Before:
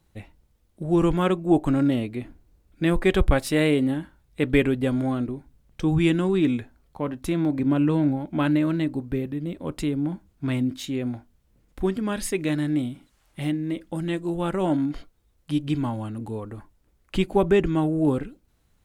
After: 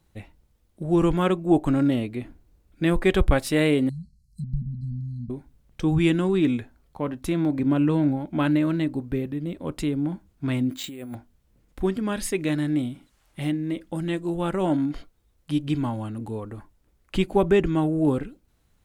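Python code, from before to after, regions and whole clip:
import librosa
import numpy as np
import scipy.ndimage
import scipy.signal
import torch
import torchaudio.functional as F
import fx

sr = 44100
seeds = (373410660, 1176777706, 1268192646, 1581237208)

y = fx.chain(x, sr, fx.brickwall_bandstop(low_hz=230.0, high_hz=4000.0),
    fx.env_lowpass_down(base_hz=1100.0, full_db=-25.5), at=(3.89, 5.3))
y = fx.chain(y, sr, fx.low_shelf(hz=160.0, db=-11.0),
    fx.over_compress(threshold_db=-35.0, ratio=-1.0),
    fx.resample_bad(factor=4, down='filtered', up='hold'), at=(10.7, 11.15))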